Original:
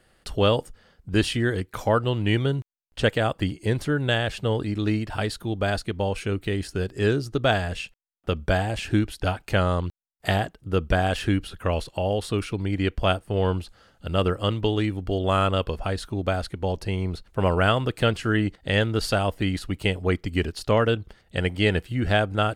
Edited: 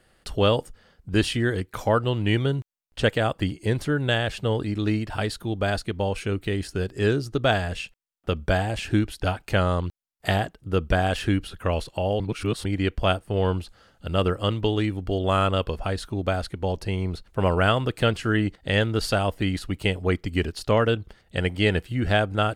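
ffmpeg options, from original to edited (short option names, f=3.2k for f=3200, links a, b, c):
-filter_complex "[0:a]asplit=3[a][b][c];[a]atrim=end=12.202[d];[b]atrim=start=12.198:end=12.652,asetpts=PTS-STARTPTS,areverse[e];[c]atrim=start=12.648[f];[d][e]acrossfade=d=0.004:c1=hsin:c2=hsin[g];[g][f]acrossfade=d=0.004:c1=hsin:c2=hsin"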